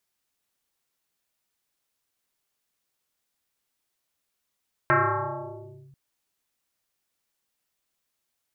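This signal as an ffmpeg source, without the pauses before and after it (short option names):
-f lavfi -i "aevalsrc='0.168*pow(10,-3*t/1.81)*sin(2*PI*137*t+7*clip(1-t/1.02,0,1)*sin(2*PI*1.78*137*t))':d=1.04:s=44100"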